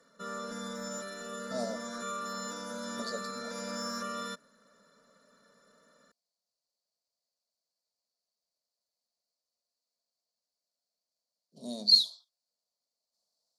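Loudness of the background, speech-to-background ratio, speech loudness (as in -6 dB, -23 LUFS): -38.5 LUFS, 13.0 dB, -25.5 LUFS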